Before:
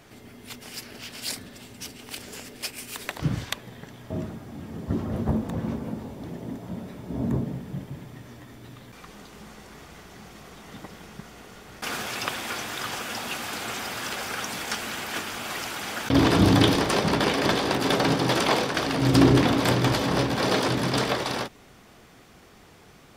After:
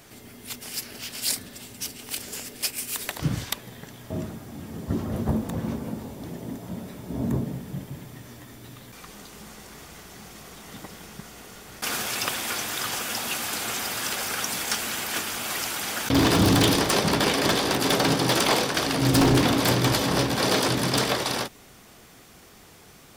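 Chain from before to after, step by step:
high-shelf EQ 5,600 Hz +11 dB
wave folding −12.5 dBFS

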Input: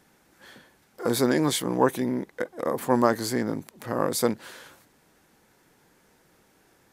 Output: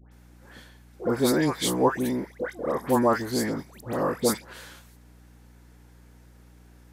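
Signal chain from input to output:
mains hum 60 Hz, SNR 24 dB
all-pass dispersion highs, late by 118 ms, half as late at 1,500 Hz

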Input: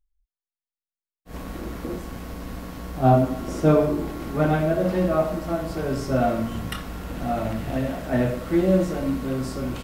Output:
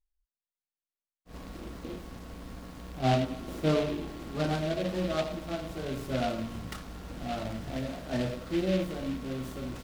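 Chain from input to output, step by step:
short delay modulated by noise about 2,500 Hz, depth 0.064 ms
level −9 dB

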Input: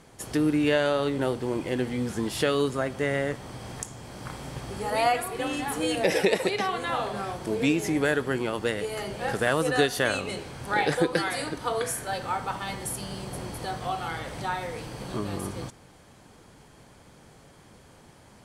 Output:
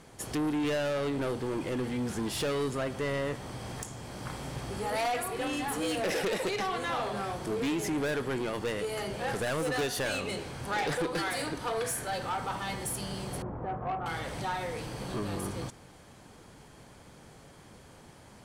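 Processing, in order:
0:13.42–0:14.06: low-pass filter 1,300 Hz 24 dB per octave
soft clipping −27 dBFS, distortion −8 dB

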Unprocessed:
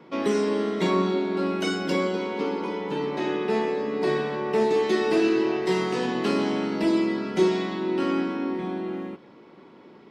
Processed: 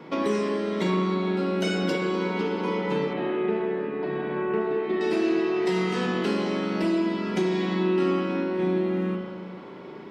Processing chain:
downward compressor 4 to 1, threshold −31 dBFS, peak gain reduction 13 dB
0:03.13–0:05.01: high-frequency loss of the air 470 metres
spring reverb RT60 1.8 s, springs 33/38 ms, chirp 60 ms, DRR 0.5 dB
level +5.5 dB

